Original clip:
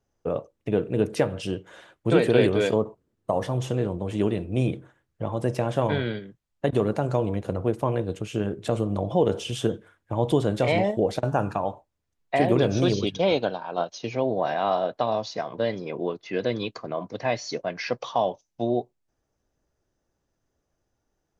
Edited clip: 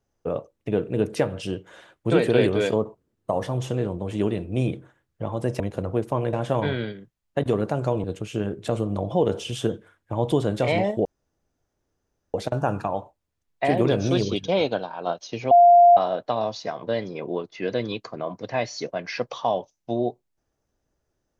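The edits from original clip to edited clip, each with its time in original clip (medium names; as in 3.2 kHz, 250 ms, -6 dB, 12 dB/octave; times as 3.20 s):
7.31–8.04 s: move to 5.60 s
11.05 s: insert room tone 1.29 s
14.22–14.68 s: bleep 698 Hz -9 dBFS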